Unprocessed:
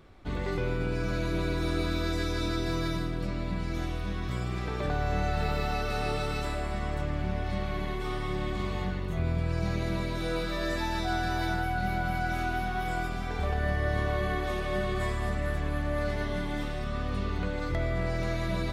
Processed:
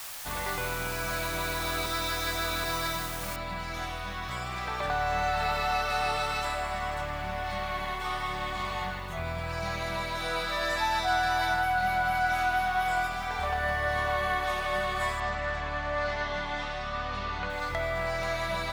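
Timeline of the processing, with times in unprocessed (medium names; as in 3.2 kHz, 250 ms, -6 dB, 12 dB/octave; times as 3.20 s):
1.86–2.64 s: reverse
3.36 s: noise floor step -45 dB -67 dB
15.20–17.50 s: low-pass 6.4 kHz 24 dB/octave
whole clip: resonant low shelf 540 Hz -12 dB, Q 1.5; trim +4.5 dB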